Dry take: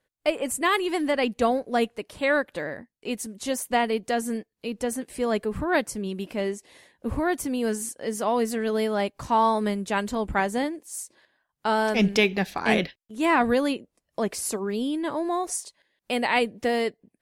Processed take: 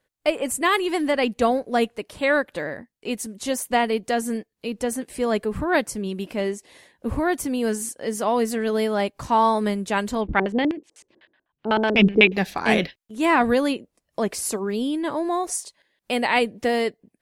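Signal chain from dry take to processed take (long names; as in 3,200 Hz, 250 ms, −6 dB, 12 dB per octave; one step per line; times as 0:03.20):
0:10.21–0:12.32: auto-filter low-pass square 8 Hz 350–2,900 Hz
level +2.5 dB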